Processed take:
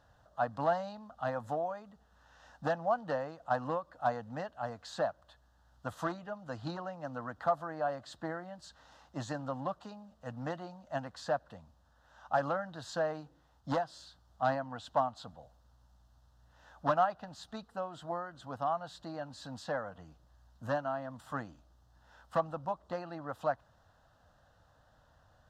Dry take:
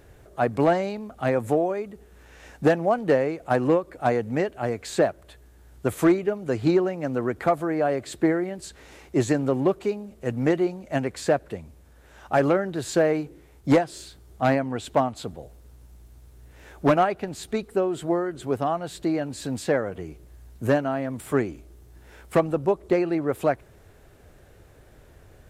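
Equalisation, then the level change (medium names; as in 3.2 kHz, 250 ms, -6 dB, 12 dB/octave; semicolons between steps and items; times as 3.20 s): distance through air 230 m; tilt EQ +3 dB/octave; static phaser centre 940 Hz, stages 4; -3.5 dB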